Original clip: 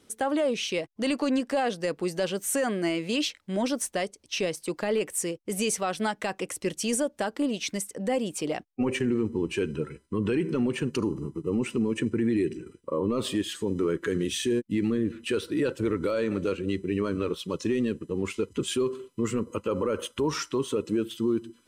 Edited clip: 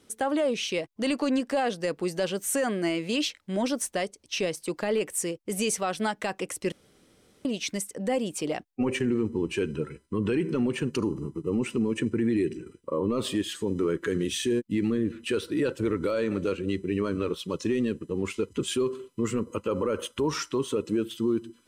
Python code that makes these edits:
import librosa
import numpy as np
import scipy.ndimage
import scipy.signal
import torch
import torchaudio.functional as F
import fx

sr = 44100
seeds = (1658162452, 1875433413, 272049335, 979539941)

y = fx.edit(x, sr, fx.room_tone_fill(start_s=6.72, length_s=0.73), tone=tone)